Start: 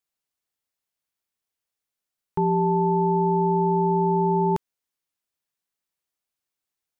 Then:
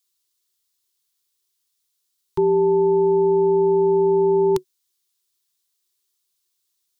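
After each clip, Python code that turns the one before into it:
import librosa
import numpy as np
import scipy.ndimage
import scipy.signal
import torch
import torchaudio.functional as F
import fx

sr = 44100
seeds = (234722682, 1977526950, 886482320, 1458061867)

y = fx.curve_eq(x, sr, hz=(150.0, 260.0, 370.0, 600.0, 1000.0, 1500.0, 2500.0, 3700.0), db=(0, -28, 12, -30, 2, -1, 2, 12))
y = y * librosa.db_to_amplitude(1.5)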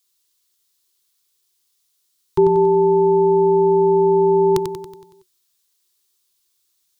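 y = fx.echo_feedback(x, sr, ms=93, feedback_pct=54, wet_db=-7.0)
y = y * librosa.db_to_amplitude(5.0)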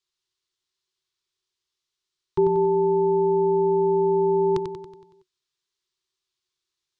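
y = fx.air_absorb(x, sr, metres=130.0)
y = y * librosa.db_to_amplitude(-5.5)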